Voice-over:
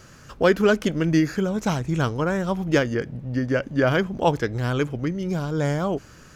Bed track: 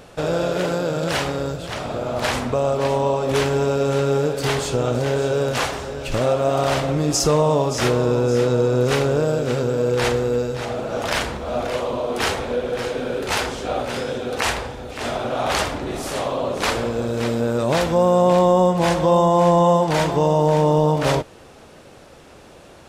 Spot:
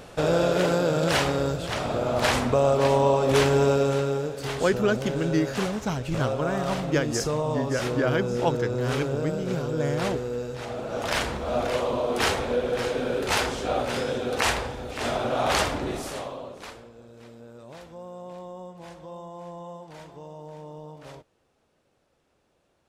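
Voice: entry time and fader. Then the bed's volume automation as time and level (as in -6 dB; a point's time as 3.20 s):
4.20 s, -5.0 dB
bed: 3.71 s -0.5 dB
4.30 s -10 dB
10.36 s -10 dB
11.40 s -2 dB
15.86 s -2 dB
16.90 s -25 dB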